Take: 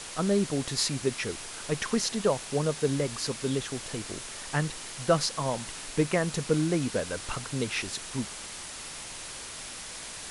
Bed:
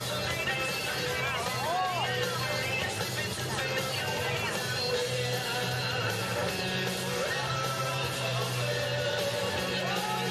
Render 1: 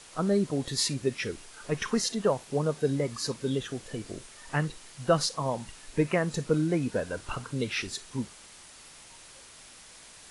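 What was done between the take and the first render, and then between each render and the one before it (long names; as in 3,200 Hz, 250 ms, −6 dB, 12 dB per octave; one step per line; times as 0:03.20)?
noise reduction from a noise print 10 dB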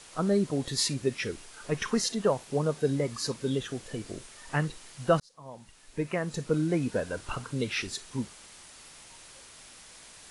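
0:05.20–0:06.78: fade in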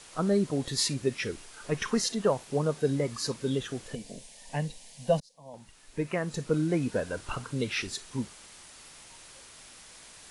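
0:03.95–0:05.54: phaser with its sweep stopped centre 350 Hz, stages 6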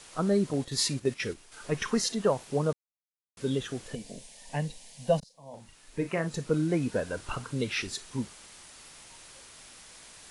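0:00.53–0:01.52: noise gate −37 dBFS, range −7 dB
0:02.73–0:03.37: silence
0:05.19–0:06.28: double-tracking delay 36 ms −8.5 dB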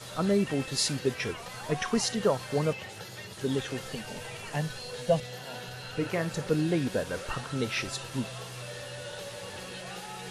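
mix in bed −10.5 dB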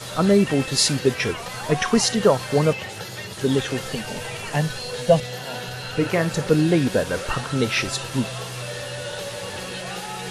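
level +9 dB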